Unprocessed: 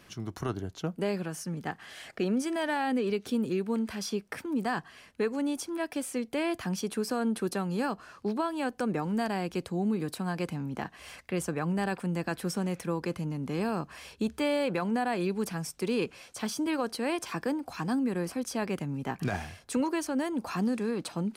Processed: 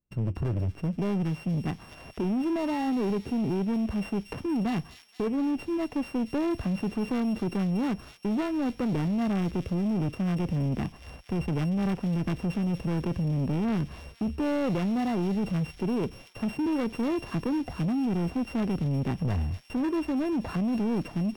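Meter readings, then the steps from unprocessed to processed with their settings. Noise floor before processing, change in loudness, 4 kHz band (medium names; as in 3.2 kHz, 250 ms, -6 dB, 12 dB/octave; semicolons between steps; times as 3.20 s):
-57 dBFS, +3.0 dB, -4.0 dB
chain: sorted samples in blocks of 16 samples; gate -47 dBFS, range -41 dB; tilt EQ -4.5 dB/octave; in parallel at +2 dB: compressor with a negative ratio -23 dBFS, ratio -0.5; on the sum: saturation -17 dBFS, distortion -12 dB; on a send: feedback echo behind a high-pass 236 ms, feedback 67%, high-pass 3.5 kHz, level -4 dB; on the sum: trim -6.5 dB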